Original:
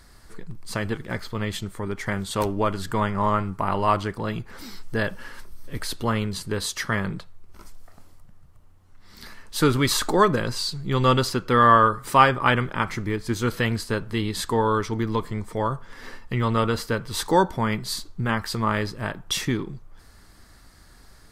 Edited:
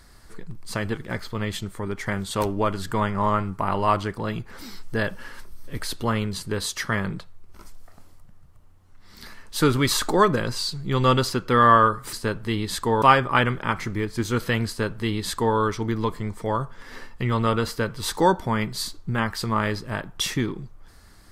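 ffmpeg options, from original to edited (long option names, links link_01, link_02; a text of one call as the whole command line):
ffmpeg -i in.wav -filter_complex "[0:a]asplit=3[link_01][link_02][link_03];[link_01]atrim=end=12.132[link_04];[link_02]atrim=start=13.788:end=14.682[link_05];[link_03]atrim=start=12.128[link_06];[link_04][link_05]acrossfade=duration=0.004:curve1=hsin:curve2=hsin[link_07];[link_07][link_06]acrossfade=duration=0.004:curve1=hsin:curve2=hsin" out.wav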